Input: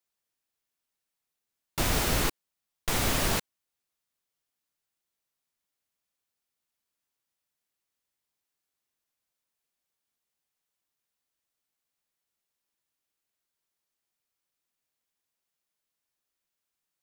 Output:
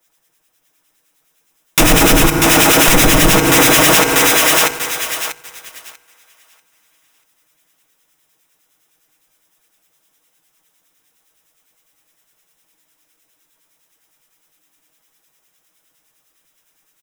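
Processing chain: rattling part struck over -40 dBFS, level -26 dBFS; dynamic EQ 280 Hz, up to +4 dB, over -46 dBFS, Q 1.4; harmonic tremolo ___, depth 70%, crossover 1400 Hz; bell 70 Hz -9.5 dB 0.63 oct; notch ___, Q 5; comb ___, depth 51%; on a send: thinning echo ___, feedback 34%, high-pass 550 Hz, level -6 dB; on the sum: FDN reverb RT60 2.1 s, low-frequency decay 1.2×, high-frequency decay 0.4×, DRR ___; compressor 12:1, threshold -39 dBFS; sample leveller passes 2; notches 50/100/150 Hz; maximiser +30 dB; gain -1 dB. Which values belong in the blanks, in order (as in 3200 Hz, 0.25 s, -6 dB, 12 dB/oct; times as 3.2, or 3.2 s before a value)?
9.8 Hz, 4400 Hz, 6.3 ms, 0.64 s, 9.5 dB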